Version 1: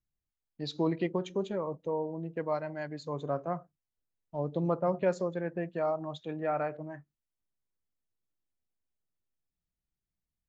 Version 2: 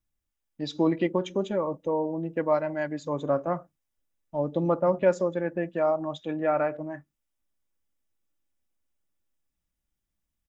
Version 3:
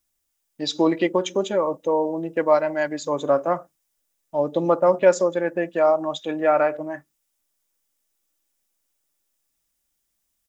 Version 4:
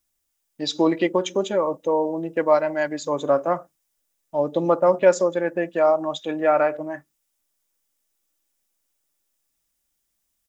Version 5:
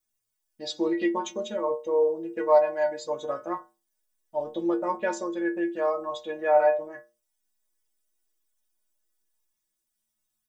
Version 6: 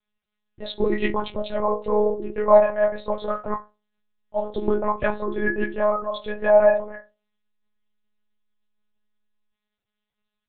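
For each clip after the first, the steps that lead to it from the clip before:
band-stop 4.3 kHz, Q 6.3; comb 3.5 ms, depth 35%; in parallel at +2.5 dB: gain riding 2 s; on the sum: trim -2 dB
tone controls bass -11 dB, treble +8 dB; trim +7 dB
no audible change
inharmonic resonator 110 Hz, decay 0.38 s, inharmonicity 0.008; trim +4.5 dB
monotone LPC vocoder at 8 kHz 210 Hz; trim +5 dB

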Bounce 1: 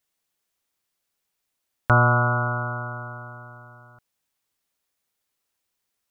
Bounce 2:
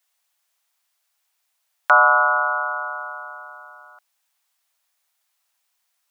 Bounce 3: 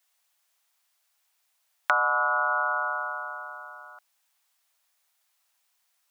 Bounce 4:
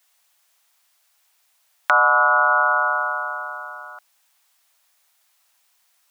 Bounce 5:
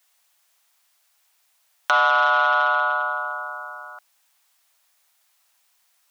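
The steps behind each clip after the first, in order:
steep high-pass 630 Hz 36 dB/octave; trim +6.5 dB
compression 6:1, threshold -21 dBFS, peak gain reduction 11 dB
loudness maximiser +9.5 dB; trim -1 dB
transformer saturation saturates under 2.1 kHz; trim -1 dB

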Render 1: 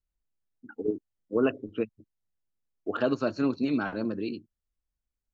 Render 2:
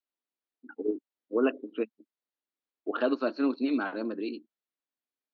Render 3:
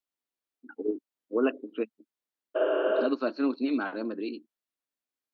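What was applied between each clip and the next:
elliptic band-pass 260–4200 Hz, stop band 40 dB
spectral replace 2.58–3.03 s, 280–3600 Hz after

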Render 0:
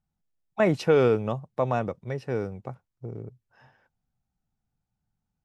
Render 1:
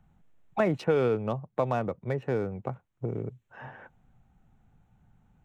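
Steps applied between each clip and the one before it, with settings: local Wiener filter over 9 samples; three bands compressed up and down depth 70%; trim -2 dB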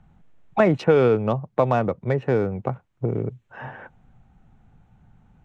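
distance through air 60 m; trim +8 dB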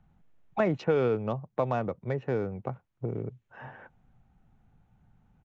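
resampled via 16 kHz; trim -8.5 dB

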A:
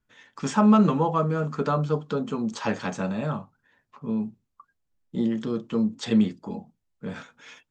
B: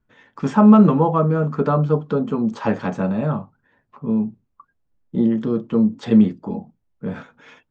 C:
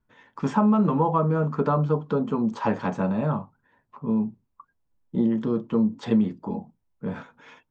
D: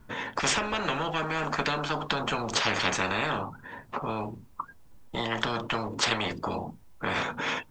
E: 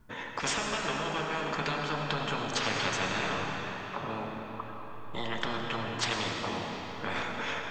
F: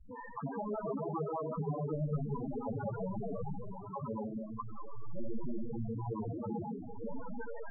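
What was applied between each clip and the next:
low-pass 1 kHz 6 dB/octave; trim +7.5 dB
peaking EQ 960 Hz +6.5 dB 0.31 oct; compression 6:1, threshold -13 dBFS, peak gain reduction 7.5 dB; trim -3.5 dB
spectrum-flattening compressor 10:1
algorithmic reverb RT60 4.6 s, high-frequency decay 0.8×, pre-delay 50 ms, DRR 1 dB; trim -5.5 dB
median filter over 15 samples; loudest bins only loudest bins 4; trim +5 dB

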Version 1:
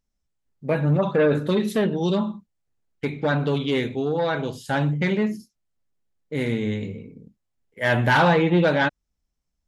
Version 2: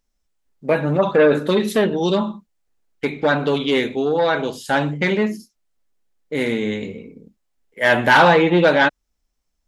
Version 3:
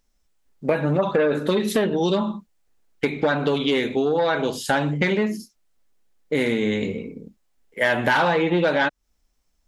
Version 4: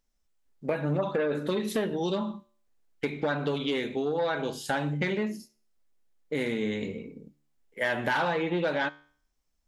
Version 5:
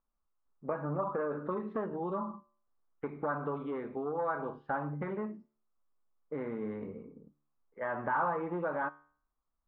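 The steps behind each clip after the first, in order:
peaking EQ 110 Hz -14 dB 1.3 oct; trim +6.5 dB
compression 4:1, threshold -23 dBFS, peak gain reduction 12.5 dB; trim +4.5 dB
feedback comb 73 Hz, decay 0.51 s, harmonics all, mix 40%; trim -4.5 dB
four-pole ladder low-pass 1.3 kHz, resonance 65%; trim +3 dB

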